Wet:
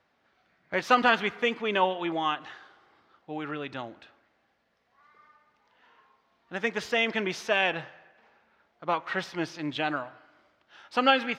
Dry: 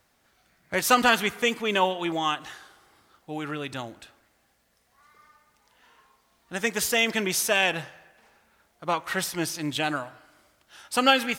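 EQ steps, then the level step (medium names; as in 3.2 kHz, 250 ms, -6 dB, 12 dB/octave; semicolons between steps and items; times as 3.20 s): high-pass 220 Hz 6 dB/octave; distance through air 230 m; 0.0 dB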